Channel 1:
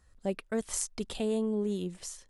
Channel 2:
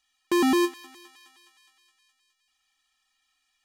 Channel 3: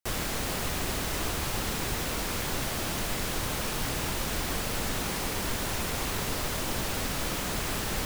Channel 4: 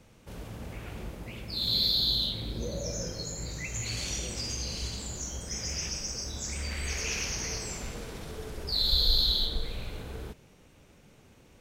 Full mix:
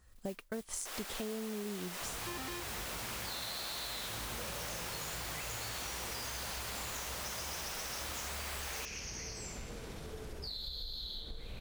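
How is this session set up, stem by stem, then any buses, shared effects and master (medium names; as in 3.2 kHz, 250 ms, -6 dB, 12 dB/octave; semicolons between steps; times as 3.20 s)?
0.0 dB, 0.00 s, no send, modulation noise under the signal 15 dB
-14.5 dB, 1.95 s, no send, frequency weighting A
-5.5 dB, 0.80 s, no send, high-pass 570 Hz 12 dB/octave
-4.0 dB, 1.75 s, no send, compression 4:1, threshold -36 dBFS, peak gain reduction 14 dB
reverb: none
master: compression 6:1, threshold -37 dBFS, peak gain reduction 11 dB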